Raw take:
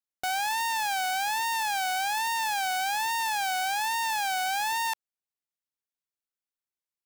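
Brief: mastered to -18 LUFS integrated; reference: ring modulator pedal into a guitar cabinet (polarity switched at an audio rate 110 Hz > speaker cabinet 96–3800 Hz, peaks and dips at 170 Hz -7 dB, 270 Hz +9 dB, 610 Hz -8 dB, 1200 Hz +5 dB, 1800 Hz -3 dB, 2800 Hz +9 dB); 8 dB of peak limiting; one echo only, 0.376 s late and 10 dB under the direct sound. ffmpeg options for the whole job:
-af "alimiter=level_in=7.5dB:limit=-24dB:level=0:latency=1,volume=-7.5dB,aecho=1:1:376:0.316,aeval=exprs='val(0)*sgn(sin(2*PI*110*n/s))':c=same,highpass=96,equalizer=f=170:t=q:w=4:g=-7,equalizer=f=270:t=q:w=4:g=9,equalizer=f=610:t=q:w=4:g=-8,equalizer=f=1.2k:t=q:w=4:g=5,equalizer=f=1.8k:t=q:w=4:g=-3,equalizer=f=2.8k:t=q:w=4:g=9,lowpass=f=3.8k:w=0.5412,lowpass=f=3.8k:w=1.3066,volume=16.5dB"

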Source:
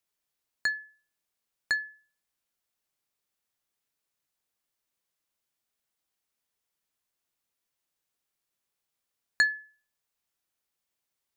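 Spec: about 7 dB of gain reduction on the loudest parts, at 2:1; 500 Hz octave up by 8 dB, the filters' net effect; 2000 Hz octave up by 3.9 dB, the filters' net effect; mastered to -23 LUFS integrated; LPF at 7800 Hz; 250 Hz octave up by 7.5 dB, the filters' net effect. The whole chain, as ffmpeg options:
-af "lowpass=7.8k,equalizer=f=250:t=o:g=7,equalizer=f=500:t=o:g=8,equalizer=f=2k:t=o:g=4,acompressor=threshold=-28dB:ratio=2,volume=8.5dB"

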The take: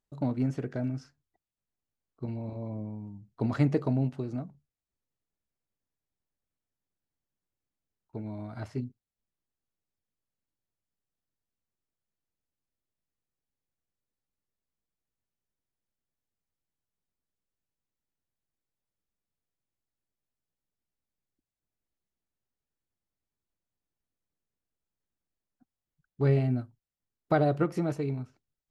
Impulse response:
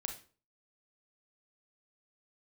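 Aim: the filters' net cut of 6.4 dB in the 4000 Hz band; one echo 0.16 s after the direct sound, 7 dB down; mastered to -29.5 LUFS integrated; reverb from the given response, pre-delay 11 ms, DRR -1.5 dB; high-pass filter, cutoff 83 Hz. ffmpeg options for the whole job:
-filter_complex "[0:a]highpass=83,equalizer=f=4k:t=o:g=-8,aecho=1:1:160:0.447,asplit=2[a][b];[1:a]atrim=start_sample=2205,adelay=11[c];[b][c]afir=irnorm=-1:irlink=0,volume=2dB[d];[a][d]amix=inputs=2:normalize=0,volume=-1dB"

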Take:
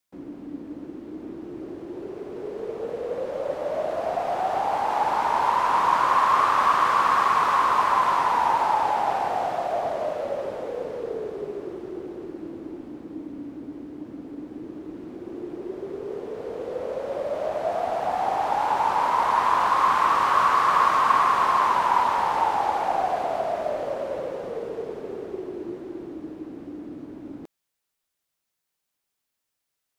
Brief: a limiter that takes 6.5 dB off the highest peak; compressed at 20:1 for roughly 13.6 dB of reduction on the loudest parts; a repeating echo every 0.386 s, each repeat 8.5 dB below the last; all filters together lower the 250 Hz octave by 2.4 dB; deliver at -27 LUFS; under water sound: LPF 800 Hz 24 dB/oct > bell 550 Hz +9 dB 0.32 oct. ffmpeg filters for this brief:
-af "equalizer=f=250:t=o:g=-4,acompressor=threshold=-29dB:ratio=20,alimiter=level_in=3.5dB:limit=-24dB:level=0:latency=1,volume=-3.5dB,lowpass=f=800:w=0.5412,lowpass=f=800:w=1.3066,equalizer=f=550:t=o:w=0.32:g=9,aecho=1:1:386|772|1158|1544:0.376|0.143|0.0543|0.0206,volume=8dB"

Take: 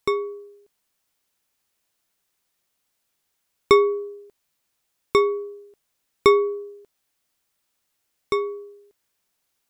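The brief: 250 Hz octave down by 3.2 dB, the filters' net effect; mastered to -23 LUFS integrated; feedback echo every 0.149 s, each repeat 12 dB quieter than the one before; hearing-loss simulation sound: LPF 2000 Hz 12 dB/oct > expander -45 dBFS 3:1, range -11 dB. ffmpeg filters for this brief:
-af "lowpass=2k,equalizer=f=250:t=o:g=-7.5,aecho=1:1:149|298|447:0.251|0.0628|0.0157,agate=range=-11dB:threshold=-45dB:ratio=3,volume=1dB"

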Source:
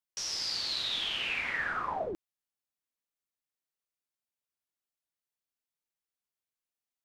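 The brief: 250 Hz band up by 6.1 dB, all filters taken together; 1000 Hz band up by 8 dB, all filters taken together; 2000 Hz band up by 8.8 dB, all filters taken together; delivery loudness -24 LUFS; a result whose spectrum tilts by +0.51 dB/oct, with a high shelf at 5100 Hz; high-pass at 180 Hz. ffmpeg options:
-af "highpass=180,equalizer=f=250:t=o:g=9,equalizer=f=1k:t=o:g=7,equalizer=f=2k:t=o:g=7.5,highshelf=f=5.1k:g=8,volume=1dB"

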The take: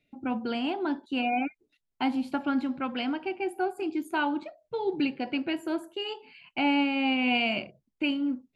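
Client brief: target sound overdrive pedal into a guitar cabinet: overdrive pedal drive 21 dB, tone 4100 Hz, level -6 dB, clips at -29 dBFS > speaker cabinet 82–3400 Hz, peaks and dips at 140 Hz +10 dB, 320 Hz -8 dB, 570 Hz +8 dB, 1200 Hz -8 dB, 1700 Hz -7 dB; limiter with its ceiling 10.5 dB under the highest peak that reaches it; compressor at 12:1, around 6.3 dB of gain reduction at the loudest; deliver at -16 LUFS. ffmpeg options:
-filter_complex "[0:a]acompressor=threshold=-28dB:ratio=12,alimiter=level_in=5dB:limit=-24dB:level=0:latency=1,volume=-5dB,asplit=2[a][b];[b]highpass=f=720:p=1,volume=21dB,asoftclip=type=tanh:threshold=-29dB[c];[a][c]amix=inputs=2:normalize=0,lowpass=f=4.1k:p=1,volume=-6dB,highpass=82,equalizer=f=140:t=q:w=4:g=10,equalizer=f=320:t=q:w=4:g=-8,equalizer=f=570:t=q:w=4:g=8,equalizer=f=1.2k:t=q:w=4:g=-8,equalizer=f=1.7k:t=q:w=4:g=-7,lowpass=f=3.4k:w=0.5412,lowpass=f=3.4k:w=1.3066,volume=20.5dB"

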